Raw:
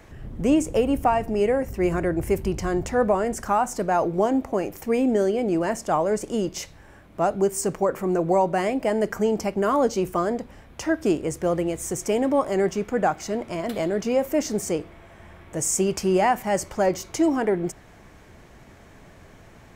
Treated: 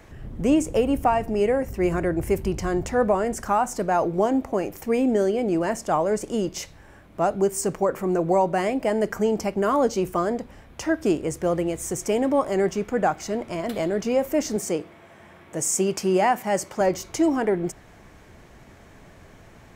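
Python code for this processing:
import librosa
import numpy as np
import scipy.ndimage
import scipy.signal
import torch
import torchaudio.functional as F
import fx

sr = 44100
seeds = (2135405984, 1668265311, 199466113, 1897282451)

y = fx.highpass(x, sr, hz=140.0, slope=12, at=(14.56, 16.81))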